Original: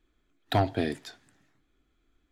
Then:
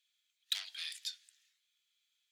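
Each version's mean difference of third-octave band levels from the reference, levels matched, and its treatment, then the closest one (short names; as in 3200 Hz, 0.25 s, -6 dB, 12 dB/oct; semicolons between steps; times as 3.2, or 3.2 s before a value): 20.0 dB: added harmonics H 5 -14 dB, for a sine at -15.5 dBFS; ladder high-pass 2600 Hz, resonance 25%; gain +3.5 dB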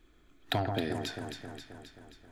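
7.5 dB: compressor 4:1, threshold -40 dBFS, peak gain reduction 16.5 dB; on a send: echo with dull and thin repeats by turns 0.133 s, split 1700 Hz, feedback 77%, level -4.5 dB; on the sum: gain +8.5 dB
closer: second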